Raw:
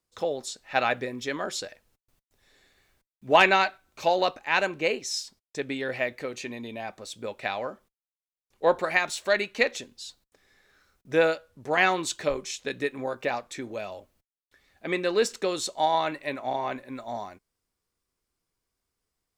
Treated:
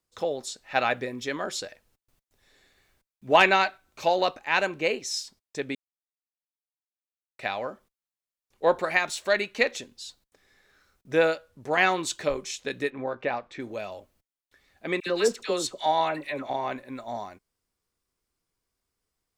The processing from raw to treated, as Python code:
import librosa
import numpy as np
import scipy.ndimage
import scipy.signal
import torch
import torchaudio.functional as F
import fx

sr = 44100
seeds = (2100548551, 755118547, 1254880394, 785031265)

y = fx.lowpass(x, sr, hz=3000.0, slope=12, at=(12.9, 13.6))
y = fx.dispersion(y, sr, late='lows', ms=65.0, hz=1300.0, at=(15.0, 16.5))
y = fx.edit(y, sr, fx.silence(start_s=5.75, length_s=1.64), tone=tone)